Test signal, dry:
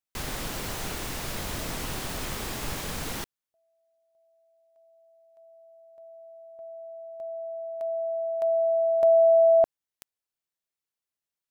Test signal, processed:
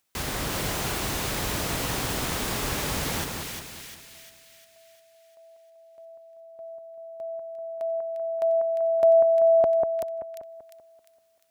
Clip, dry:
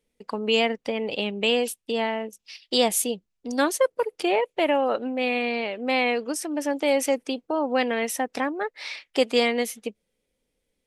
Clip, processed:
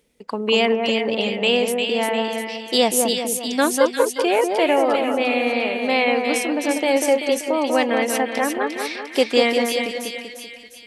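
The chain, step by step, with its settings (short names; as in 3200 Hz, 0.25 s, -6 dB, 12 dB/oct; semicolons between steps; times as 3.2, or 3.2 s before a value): HPF 40 Hz; upward compressor 1.5:1, threshold -50 dBFS; split-band echo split 1800 Hz, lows 0.193 s, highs 0.351 s, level -4 dB; gain +3.5 dB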